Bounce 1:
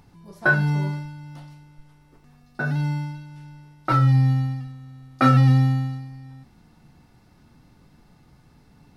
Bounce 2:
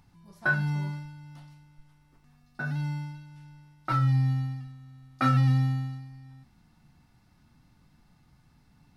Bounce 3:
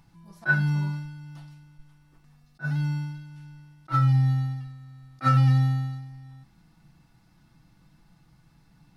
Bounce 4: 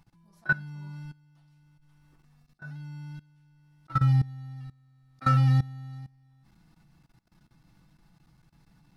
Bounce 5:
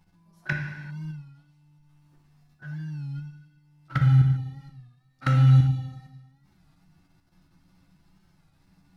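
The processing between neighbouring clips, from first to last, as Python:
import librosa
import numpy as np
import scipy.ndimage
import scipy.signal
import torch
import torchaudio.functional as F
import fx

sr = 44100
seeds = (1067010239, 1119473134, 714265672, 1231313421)

y1 = fx.peak_eq(x, sr, hz=440.0, db=-8.5, octaves=1.1)
y1 = y1 * 10.0 ** (-6.0 / 20.0)
y2 = y1 + 0.46 * np.pad(y1, (int(6.1 * sr / 1000.0), 0))[:len(y1)]
y2 = fx.attack_slew(y2, sr, db_per_s=440.0)
y2 = y2 * 10.0 ** (1.5 / 20.0)
y3 = fx.level_steps(y2, sr, step_db=20)
y4 = fx.env_flanger(y3, sr, rest_ms=12.0, full_db=-23.0)
y4 = fx.rev_gated(y4, sr, seeds[0], gate_ms=420, shape='falling', drr_db=2.0)
y4 = fx.record_warp(y4, sr, rpm=33.33, depth_cents=100.0)
y4 = y4 * 10.0 ** (1.5 / 20.0)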